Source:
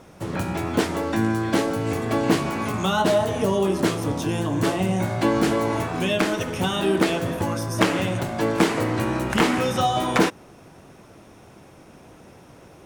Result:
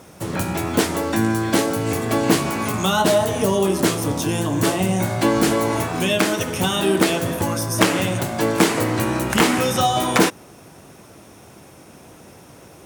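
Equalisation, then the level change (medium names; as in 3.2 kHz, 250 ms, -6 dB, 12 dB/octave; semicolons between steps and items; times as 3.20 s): high-pass 50 Hz; treble shelf 6.2 kHz +11 dB; +2.5 dB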